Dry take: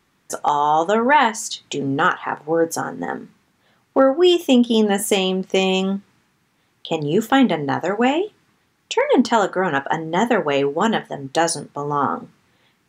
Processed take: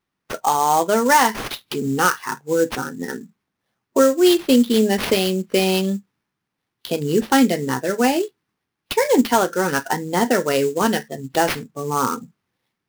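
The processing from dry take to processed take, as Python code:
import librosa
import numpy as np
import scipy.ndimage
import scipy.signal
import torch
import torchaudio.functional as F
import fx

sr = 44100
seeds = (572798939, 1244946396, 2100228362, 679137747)

y = fx.noise_reduce_blind(x, sr, reduce_db=16)
y = fx.sample_hold(y, sr, seeds[0], rate_hz=7500.0, jitter_pct=20)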